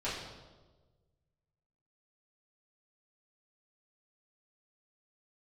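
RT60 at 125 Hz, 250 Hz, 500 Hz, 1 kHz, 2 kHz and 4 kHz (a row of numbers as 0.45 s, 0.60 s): 2.1 s, 1.4 s, 1.5 s, 1.2 s, 0.90 s, 0.95 s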